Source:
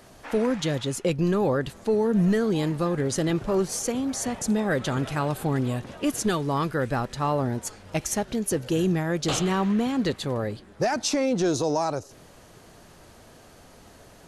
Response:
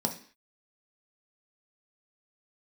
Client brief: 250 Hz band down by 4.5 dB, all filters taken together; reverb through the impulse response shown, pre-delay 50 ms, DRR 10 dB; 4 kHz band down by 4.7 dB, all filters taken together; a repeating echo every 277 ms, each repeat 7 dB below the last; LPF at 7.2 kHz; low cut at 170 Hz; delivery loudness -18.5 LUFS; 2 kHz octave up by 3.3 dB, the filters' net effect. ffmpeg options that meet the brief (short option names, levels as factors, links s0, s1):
-filter_complex "[0:a]highpass=170,lowpass=7200,equalizer=f=250:t=o:g=-4.5,equalizer=f=2000:t=o:g=6,equalizer=f=4000:t=o:g=-8,aecho=1:1:277|554|831|1108|1385:0.447|0.201|0.0905|0.0407|0.0183,asplit=2[s0][s1];[1:a]atrim=start_sample=2205,adelay=50[s2];[s1][s2]afir=irnorm=-1:irlink=0,volume=0.158[s3];[s0][s3]amix=inputs=2:normalize=0,volume=2.37"